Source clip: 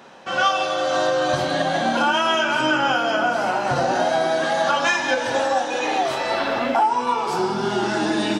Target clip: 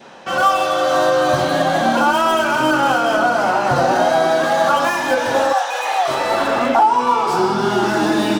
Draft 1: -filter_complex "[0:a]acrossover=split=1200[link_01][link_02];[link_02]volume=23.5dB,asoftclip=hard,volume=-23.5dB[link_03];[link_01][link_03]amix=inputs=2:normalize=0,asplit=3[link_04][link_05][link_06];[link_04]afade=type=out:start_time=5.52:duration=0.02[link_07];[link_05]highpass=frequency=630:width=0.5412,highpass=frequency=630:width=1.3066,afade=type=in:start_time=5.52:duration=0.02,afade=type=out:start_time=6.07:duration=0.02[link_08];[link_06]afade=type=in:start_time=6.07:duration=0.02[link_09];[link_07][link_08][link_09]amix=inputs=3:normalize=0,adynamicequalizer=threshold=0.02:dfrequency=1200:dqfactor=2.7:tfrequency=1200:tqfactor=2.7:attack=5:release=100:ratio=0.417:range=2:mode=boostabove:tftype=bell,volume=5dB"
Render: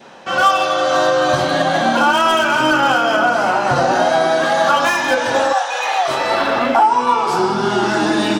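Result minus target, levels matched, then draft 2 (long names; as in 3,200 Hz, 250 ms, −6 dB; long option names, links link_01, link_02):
gain into a clipping stage and back: distortion −6 dB
-filter_complex "[0:a]acrossover=split=1200[link_01][link_02];[link_02]volume=30.5dB,asoftclip=hard,volume=-30.5dB[link_03];[link_01][link_03]amix=inputs=2:normalize=0,asplit=3[link_04][link_05][link_06];[link_04]afade=type=out:start_time=5.52:duration=0.02[link_07];[link_05]highpass=frequency=630:width=0.5412,highpass=frequency=630:width=1.3066,afade=type=in:start_time=5.52:duration=0.02,afade=type=out:start_time=6.07:duration=0.02[link_08];[link_06]afade=type=in:start_time=6.07:duration=0.02[link_09];[link_07][link_08][link_09]amix=inputs=3:normalize=0,adynamicequalizer=threshold=0.02:dfrequency=1200:dqfactor=2.7:tfrequency=1200:tqfactor=2.7:attack=5:release=100:ratio=0.417:range=2:mode=boostabove:tftype=bell,volume=5dB"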